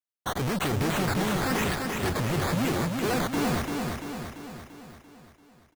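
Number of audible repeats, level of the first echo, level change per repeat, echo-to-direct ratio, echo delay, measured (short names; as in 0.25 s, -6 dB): 6, -4.0 dB, -5.0 dB, -2.5 dB, 0.341 s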